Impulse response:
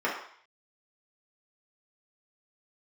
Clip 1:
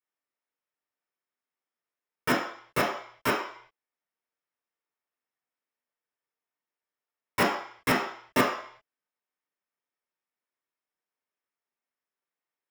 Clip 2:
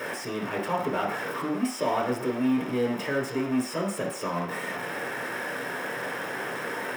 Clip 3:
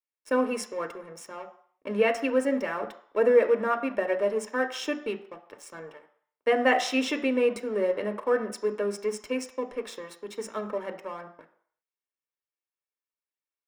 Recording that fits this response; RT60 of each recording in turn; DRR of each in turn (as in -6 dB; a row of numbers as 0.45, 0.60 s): 1; 0.55, 0.55, 0.55 s; -6.0, -1.5, 7.0 dB